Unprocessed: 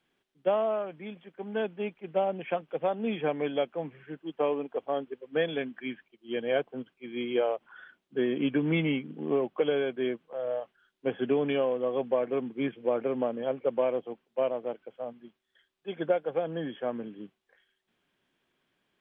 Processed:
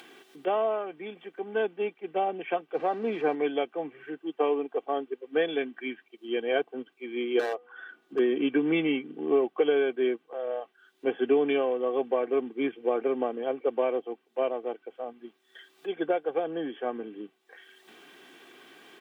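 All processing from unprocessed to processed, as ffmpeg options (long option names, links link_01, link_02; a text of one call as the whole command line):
ffmpeg -i in.wav -filter_complex "[0:a]asettb=1/sr,asplit=3[link_01][link_02][link_03];[link_01]atrim=end=2.744[link_04];[link_02]atrim=start=2.74:end=3.35,asetpts=PTS-STARTPTS,afade=type=in:duration=0.004:curve=qsin,afade=type=out:start_time=0.606:duration=0.004:curve=qsin,aeval=exprs='val(0)+0.5*0.0112*sgn(val(0))':channel_layout=same,lowpass=2300[link_05];[link_03]atrim=start=3.346[link_06];[link_04][link_05]acrossfade=duration=0.004:curve1=hsin:curve2=qsin[link_07];[link_07][link_06]acrossfade=duration=0.004:curve1=qsin:curve2=hsin,asettb=1/sr,asplit=3[link_08][link_09][link_10];[link_08]atrim=end=7.394[link_11];[link_09]atrim=start=7.39:end=8.19,asetpts=PTS-STARTPTS,afade=type=in:duration=0.004:curve=qsin,afade=type=out:start_time=0.796:duration=0.004:curve=qsin,highshelf=frequency=2700:gain=-7.5,bandreject=frequency=244.7:width_type=h:width=4,bandreject=frequency=489.4:width_type=h:width=4,bandreject=frequency=734.1:width_type=h:width=4,bandreject=frequency=978.8:width_type=h:width=4,bandreject=frequency=1223.5:width_type=h:width=4,bandreject=frequency=1468.2:width_type=h:width=4,bandreject=frequency=1712.9:width_type=h:width=4,bandreject=frequency=1957.6:width_type=h:width=4,aeval=exprs='0.0631*(abs(mod(val(0)/0.0631+3,4)-2)-1)':channel_layout=same[link_12];[link_10]atrim=start=8.186[link_13];[link_11][link_12]acrossfade=duration=0.004:curve1=hsin:curve2=qsin[link_14];[link_14][link_13]acrossfade=duration=0.004:curve1=qsin:curve2=hsin,highpass=frequency=190:width=0.5412,highpass=frequency=190:width=1.3066,aecho=1:1:2.6:0.53,acompressor=mode=upward:threshold=-35dB:ratio=2.5,volume=1dB" out.wav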